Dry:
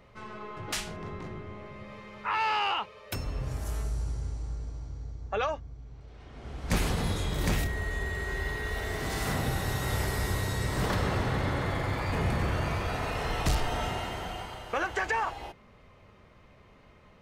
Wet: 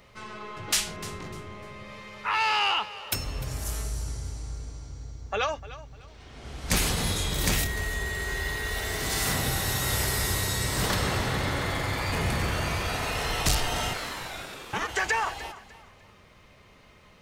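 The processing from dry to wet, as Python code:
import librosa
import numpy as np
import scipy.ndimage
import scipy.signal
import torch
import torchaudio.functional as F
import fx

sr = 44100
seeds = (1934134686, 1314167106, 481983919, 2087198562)

y = fx.high_shelf(x, sr, hz=2500.0, db=12.0)
y = fx.ring_mod(y, sr, carrier_hz=fx.line((13.93, 1500.0), (14.87, 290.0)), at=(13.93, 14.87), fade=0.02)
y = fx.echo_feedback(y, sr, ms=300, feedback_pct=29, wet_db=-16.5)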